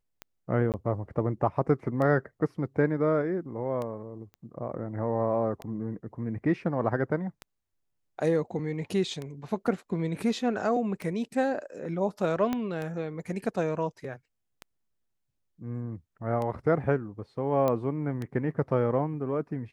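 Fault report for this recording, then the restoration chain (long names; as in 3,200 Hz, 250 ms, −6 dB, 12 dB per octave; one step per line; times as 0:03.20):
scratch tick 33 1/3 rpm −22 dBFS
0:00.72–0:00.74: drop-out 18 ms
0:04.34: click −34 dBFS
0:12.53: click −16 dBFS
0:17.68: click −15 dBFS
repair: click removal
repair the gap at 0:00.72, 18 ms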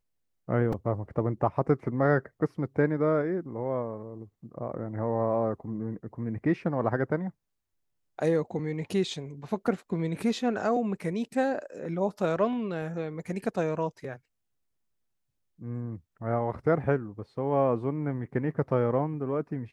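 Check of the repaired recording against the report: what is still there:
0:12.53: click
0:17.68: click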